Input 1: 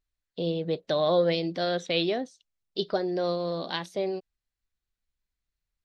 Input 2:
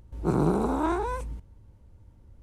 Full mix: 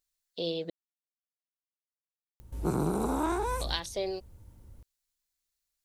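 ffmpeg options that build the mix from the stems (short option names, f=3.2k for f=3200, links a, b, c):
-filter_complex "[0:a]bass=f=250:g=-10,treble=f=4k:g=13,volume=-2dB,asplit=3[a][b][c];[a]atrim=end=0.7,asetpts=PTS-STARTPTS,afade=t=out:st=0.696:d=0.004:c=hsin[d];[b]atrim=start=0.7:end=3.61,asetpts=PTS-STARTPTS,volume=0[e];[c]atrim=start=3.61,asetpts=PTS-STARTPTS,afade=t=in:d=0.004:c=hsin[f];[d][e][f]concat=n=3:v=0:a=1[g];[1:a]aemphasis=mode=production:type=50fm,adelay=2400,volume=0.5dB[h];[g][h]amix=inputs=2:normalize=0,acompressor=threshold=-26dB:ratio=4"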